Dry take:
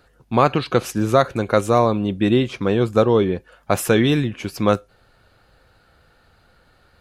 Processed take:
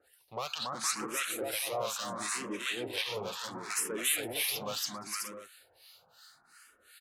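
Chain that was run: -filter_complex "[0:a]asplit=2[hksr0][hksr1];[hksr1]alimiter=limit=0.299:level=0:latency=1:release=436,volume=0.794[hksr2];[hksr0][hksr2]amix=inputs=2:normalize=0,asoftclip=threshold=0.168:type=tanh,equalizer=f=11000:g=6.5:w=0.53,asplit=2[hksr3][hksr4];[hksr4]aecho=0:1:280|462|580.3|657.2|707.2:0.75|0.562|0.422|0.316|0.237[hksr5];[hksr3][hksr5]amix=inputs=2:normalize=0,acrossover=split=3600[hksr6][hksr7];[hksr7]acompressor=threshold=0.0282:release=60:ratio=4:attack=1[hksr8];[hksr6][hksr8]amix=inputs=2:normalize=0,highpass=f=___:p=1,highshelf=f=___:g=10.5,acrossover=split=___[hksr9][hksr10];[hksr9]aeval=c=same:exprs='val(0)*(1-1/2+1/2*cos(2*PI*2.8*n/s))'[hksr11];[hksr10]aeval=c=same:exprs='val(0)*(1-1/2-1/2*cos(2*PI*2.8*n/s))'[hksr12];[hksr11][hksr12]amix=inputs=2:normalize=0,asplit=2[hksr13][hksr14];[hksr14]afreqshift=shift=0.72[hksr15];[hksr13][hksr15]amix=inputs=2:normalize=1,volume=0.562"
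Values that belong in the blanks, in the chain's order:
1200, 2900, 1100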